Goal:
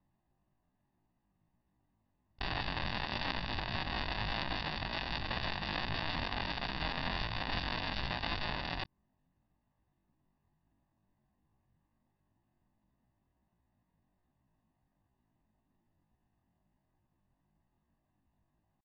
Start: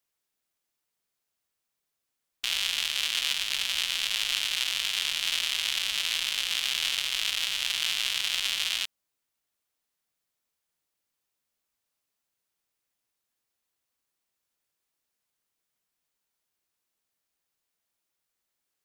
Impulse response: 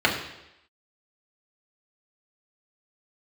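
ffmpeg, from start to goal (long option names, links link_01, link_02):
-af "bass=frequency=250:gain=10,treble=frequency=4000:gain=5,asetrate=83250,aresample=44100,atempo=0.529732,alimiter=limit=-16.5dB:level=0:latency=1:release=260,aeval=exprs='0.15*(cos(1*acos(clip(val(0)/0.15,-1,1)))-cos(1*PI/2))+0.0596*(cos(7*acos(clip(val(0)/0.15,-1,1)))-cos(7*PI/2))':channel_layout=same,aecho=1:1:1.1:0.72,adynamicsmooth=sensitivity=1.5:basefreq=1000,aresample=11025,aresample=44100,volume=9dB"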